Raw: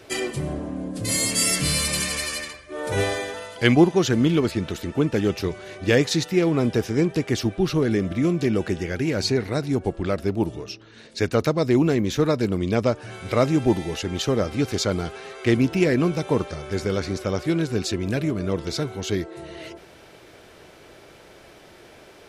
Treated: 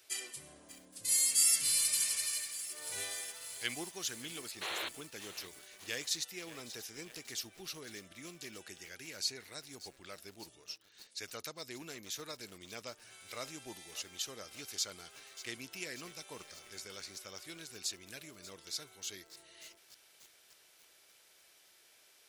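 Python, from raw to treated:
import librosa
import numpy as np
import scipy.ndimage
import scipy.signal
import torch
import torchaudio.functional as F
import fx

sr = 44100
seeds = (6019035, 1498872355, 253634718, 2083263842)

y = scipy.signal.lfilter([1.0, -0.97], [1.0], x)
y = fx.spec_paint(y, sr, seeds[0], shape='noise', start_s=4.61, length_s=0.28, low_hz=320.0, high_hz=4400.0, level_db=-34.0)
y = fx.echo_crushed(y, sr, ms=587, feedback_pct=80, bits=7, wet_db=-13.5)
y = F.gain(torch.from_numpy(y), -5.0).numpy()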